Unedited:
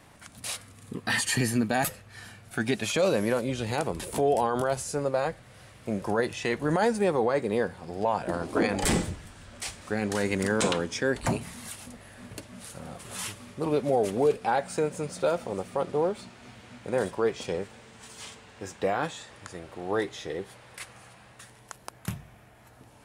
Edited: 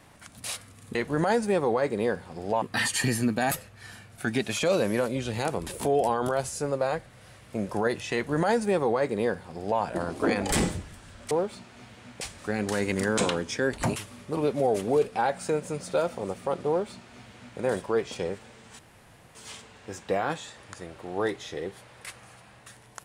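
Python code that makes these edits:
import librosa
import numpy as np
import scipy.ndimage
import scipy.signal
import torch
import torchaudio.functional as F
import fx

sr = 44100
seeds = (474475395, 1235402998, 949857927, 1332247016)

y = fx.edit(x, sr, fx.duplicate(start_s=6.47, length_s=1.67, to_s=0.95),
    fx.cut(start_s=11.39, length_s=1.86),
    fx.duplicate(start_s=15.97, length_s=0.9, to_s=9.64),
    fx.insert_room_tone(at_s=18.08, length_s=0.56), tone=tone)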